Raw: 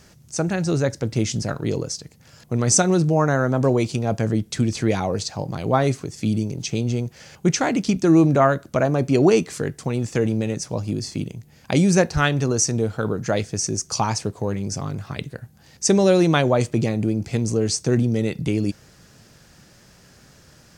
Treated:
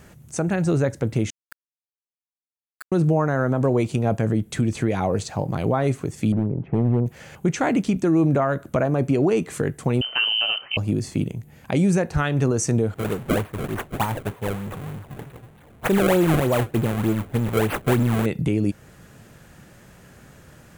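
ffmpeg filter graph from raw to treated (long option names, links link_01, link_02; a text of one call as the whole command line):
ffmpeg -i in.wav -filter_complex "[0:a]asettb=1/sr,asplit=3[link_01][link_02][link_03];[link_01]atrim=end=1.304[link_04];[link_02]atrim=start=1.3:end=2.92,asetpts=PTS-STARTPTS,afade=type=in:duration=0.004:curve=qsin,afade=type=out:start_time=1.616:duration=0.004:curve=qsin,asuperpass=centerf=1600:order=20:qfactor=5.6,aeval=exprs='val(0)*gte(abs(val(0)),0.0376)':channel_layout=same[link_05];[link_03]atrim=start=2.916[link_06];[link_04][link_05]acrossfade=duration=0.004:curve1=hsin:curve2=qsin[link_07];[link_07][link_06]acrossfade=duration=0.004:curve1=qsin:curve2=hsin,asettb=1/sr,asplit=3[link_08][link_09][link_10];[link_08]atrim=end=6.324[link_11];[link_09]atrim=start=6.32:end=7.06,asetpts=PTS-STARTPTS,afade=type=in:duration=0.004:curve=qsin,afade=type=out:start_time=0.736:duration=0.004:curve=qsin,lowpass=frequency=1400:width=0.5412,lowpass=frequency=1400:width=1.3066,volume=18dB,asoftclip=hard,volume=-18dB[link_12];[link_10]atrim=start=7.056[link_13];[link_11][link_12]acrossfade=duration=0.004:curve1=hsin:curve2=qsin[link_14];[link_14][link_13]acrossfade=duration=0.004:curve1=qsin:curve2=hsin,asettb=1/sr,asplit=3[link_15][link_16][link_17];[link_15]atrim=end=10.014[link_18];[link_16]atrim=start=10.01:end=10.77,asetpts=PTS-STARTPTS,afade=type=in:duration=0.004:curve=qsin,afade=type=out:start_time=0.756:duration=0.004:curve=qsin,aemphasis=mode=production:type=75kf,bandreject=frequency=122.4:width_type=h:width=4,bandreject=frequency=244.8:width_type=h:width=4,bandreject=frequency=367.2:width_type=h:width=4,bandreject=frequency=489.6:width_type=h:width=4,bandreject=frequency=612:width_type=h:width=4,bandreject=frequency=734.4:width_type=h:width=4,bandreject=frequency=856.8:width_type=h:width=4,bandreject=frequency=979.2:width_type=h:width=4,bandreject=frequency=1101.6:width_type=h:width=4,bandreject=frequency=1224:width_type=h:width=4,bandreject=frequency=1346.4:width_type=h:width=4,bandreject=frequency=1468.8:width_type=h:width=4,bandreject=frequency=1591.2:width_type=h:width=4,bandreject=frequency=1713.6:width_type=h:width=4,bandreject=frequency=1836:width_type=h:width=4,bandreject=frequency=1958.4:width_type=h:width=4,bandreject=frequency=2080.8:width_type=h:width=4,bandreject=frequency=2203.2:width_type=h:width=4,bandreject=frequency=2325.6:width_type=h:width=4,bandreject=frequency=2448:width_type=h:width=4,bandreject=frequency=2570.4:width_type=h:width=4,bandreject=frequency=2692.8:width_type=h:width=4,bandreject=frequency=2815.2:width_type=h:width=4,bandreject=frequency=2937.6:width_type=h:width=4,bandreject=frequency=3060:width_type=h:width=4,bandreject=frequency=3182.4:width_type=h:width=4,bandreject=frequency=3304.8:width_type=h:width=4,bandreject=frequency=3427.2:width_type=h:width=4,bandreject=frequency=3549.6:width_type=h:width=4,bandreject=frequency=3672:width_type=h:width=4,bandreject=frequency=3794.4:width_type=h:width=4,bandreject=frequency=3916.8:width_type=h:width=4,bandreject=frequency=4039.2:width_type=h:width=4,bandreject=frequency=4161.6:width_type=h:width=4,bandreject=frequency=4284:width_type=h:width=4,lowpass=frequency=2700:width_type=q:width=0.5098,lowpass=frequency=2700:width_type=q:width=0.6013,lowpass=frequency=2700:width_type=q:width=0.9,lowpass=frequency=2700:width_type=q:width=2.563,afreqshift=-3200[link_19];[link_17]atrim=start=10.766[link_20];[link_18][link_19]acrossfade=duration=0.004:curve1=hsin:curve2=qsin[link_21];[link_21][link_20]acrossfade=duration=0.004:curve1=qsin:curve2=hsin,asettb=1/sr,asplit=3[link_22][link_23][link_24];[link_22]atrim=end=12.944[link_25];[link_23]atrim=start=12.94:end=18.26,asetpts=PTS-STARTPTS,afade=type=in:duration=0.004:curve=qsin,afade=type=out:start_time=5.316:duration=0.004:curve=qsin,aeval=exprs='val(0)+0.5*0.0891*sgn(val(0))':channel_layout=same,agate=range=-33dB:threshold=-13dB:ratio=3:release=100:detection=peak,acrusher=samples=28:mix=1:aa=0.000001:lfo=1:lforange=44.8:lforate=3.3[link_26];[link_24]atrim=start=18.256[link_27];[link_25][link_26]acrossfade=duration=0.004:curve1=hsin:curve2=qsin[link_28];[link_28][link_27]acrossfade=duration=0.004:curve1=qsin:curve2=hsin,equalizer=frequency=5100:width=1.5:gain=-13.5,alimiter=limit=-15.5dB:level=0:latency=1:release=216,volume=4dB" out.wav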